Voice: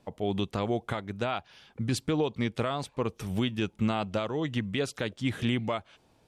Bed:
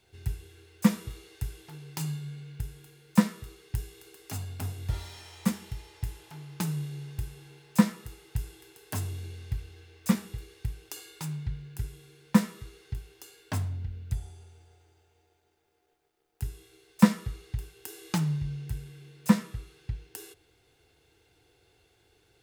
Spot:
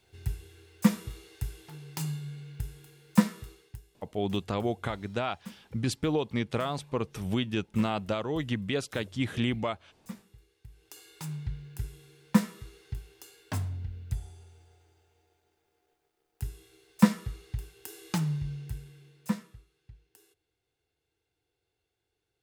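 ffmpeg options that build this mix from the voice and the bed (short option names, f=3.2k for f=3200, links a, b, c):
-filter_complex "[0:a]adelay=3950,volume=-0.5dB[a];[1:a]volume=15.5dB,afade=t=out:st=3.42:d=0.38:silence=0.141254,afade=t=in:st=10.68:d=0.67:silence=0.158489,afade=t=out:st=18.5:d=1.17:silence=0.158489[b];[a][b]amix=inputs=2:normalize=0"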